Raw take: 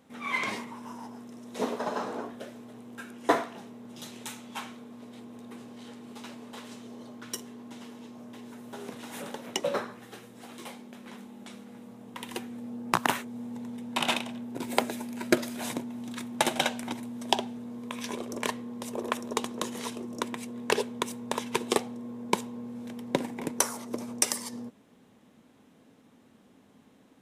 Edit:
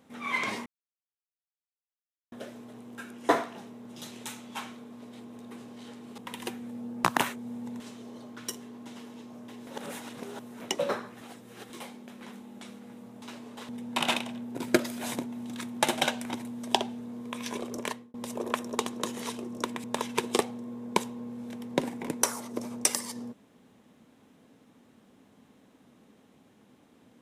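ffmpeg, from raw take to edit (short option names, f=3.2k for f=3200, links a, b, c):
-filter_complex "[0:a]asplit=14[a][b][c][d][e][f][g][h][i][j][k][l][m][n];[a]atrim=end=0.66,asetpts=PTS-STARTPTS,afade=t=out:st=0.656:d=0.004:c=hsin[o];[b]atrim=start=0.66:end=2.32,asetpts=PTS-STARTPTS,volume=0[p];[c]atrim=start=2.32:end=6.182,asetpts=PTS-STARTPTS,afade=t=in:d=0.004:c=hsin[q];[d]atrim=start=12.068:end=13.692[r];[e]atrim=start=6.648:end=8.522[s];[f]atrim=start=8.518:end=9.452,asetpts=PTS-STARTPTS,areverse[t];[g]atrim=start=9.448:end=10.062[u];[h]atrim=start=10.058:end=10.552,asetpts=PTS-STARTPTS,areverse[v];[i]atrim=start=10.548:end=12.072[w];[j]atrim=start=6.178:end=6.652[x];[k]atrim=start=13.688:end=14.682[y];[l]atrim=start=15.258:end=18.72,asetpts=PTS-STARTPTS,afade=t=out:st=3.082:d=0.38[z];[m]atrim=start=18.72:end=20.422,asetpts=PTS-STARTPTS,afade=t=in:d=0.004:c=hsin[aa];[n]atrim=start=21.208[ab];[o][p][q]concat=n=3:v=0:a=1[ac];[ac][r]acrossfade=d=0.004:c1=hsin:c2=hsin[ad];[ad][s]acrossfade=d=0.004:c1=hsin:c2=hsin[ae];[ae][t]acrossfade=d=0.004:c1=hsin:c2=hsin[af];[af][u]acrossfade=d=0.004:c1=hsin:c2=hsin[ag];[ag][v]acrossfade=d=0.004:c1=hsin:c2=hsin[ah];[ah][w]acrossfade=d=0.004:c1=hsin:c2=hsin[ai];[ai][x]acrossfade=d=0.004:c1=hsin:c2=hsin[aj];[aj][y]acrossfade=d=0.004:c1=hsin:c2=hsin[ak];[z][aa]concat=n=2:v=0:a=1[al];[ak][al]acrossfade=d=0.004:c1=hsin:c2=hsin[am];[am][ab]acrossfade=d=0.004:c1=hsin:c2=hsin"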